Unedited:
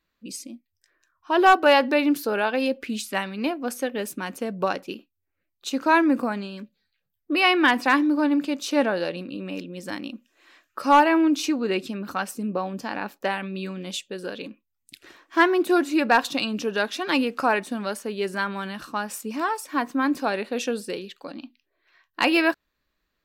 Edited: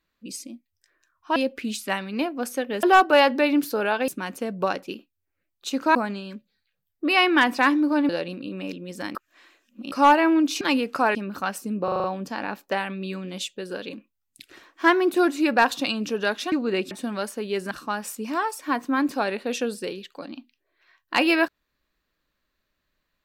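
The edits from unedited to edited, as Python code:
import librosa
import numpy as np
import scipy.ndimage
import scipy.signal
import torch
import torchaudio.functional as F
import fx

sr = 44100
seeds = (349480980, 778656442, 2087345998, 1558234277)

y = fx.edit(x, sr, fx.move(start_s=1.36, length_s=1.25, to_s=4.08),
    fx.cut(start_s=5.95, length_s=0.27),
    fx.cut(start_s=8.36, length_s=0.61),
    fx.reverse_span(start_s=10.03, length_s=0.77),
    fx.swap(start_s=11.49, length_s=0.39, other_s=17.05, other_length_s=0.54),
    fx.stutter(start_s=12.57, slice_s=0.04, count=6),
    fx.cut(start_s=18.39, length_s=0.38), tone=tone)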